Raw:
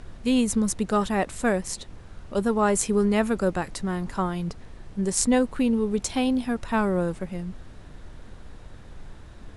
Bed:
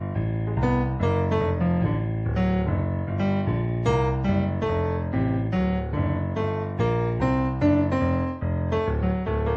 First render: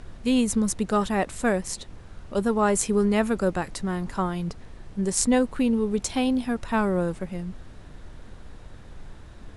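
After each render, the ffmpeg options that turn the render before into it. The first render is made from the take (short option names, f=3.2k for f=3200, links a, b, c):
-af anull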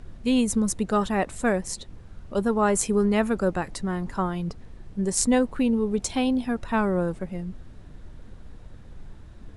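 -af "afftdn=nr=6:nf=-45"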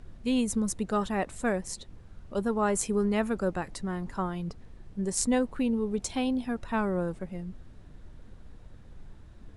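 -af "volume=-5dB"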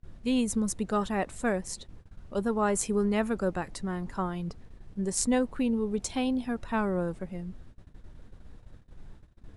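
-af "agate=range=-25dB:threshold=-46dB:ratio=16:detection=peak"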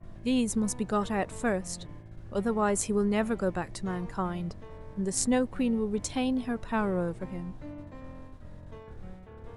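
-filter_complex "[1:a]volume=-23dB[a];[0:a][a]amix=inputs=2:normalize=0"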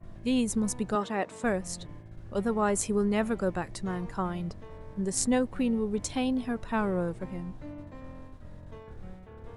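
-filter_complex "[0:a]asettb=1/sr,asplit=3[a][b][c];[a]atrim=end=0.954[d];[b]atrim=start=0.95:end=1.44,asetpts=PTS-STARTPTS,afade=t=in:d=0.004:c=qsin,afade=t=out:st=0.486:d=0.004:c=qsin,highpass=220,lowpass=7.1k[e];[c]atrim=start=1.436[f];[d][e]acrossfade=d=0.004:c1=hsin:c2=qsin[g];[g][f]acrossfade=d=0.004:c1=qsin:c2=hsin"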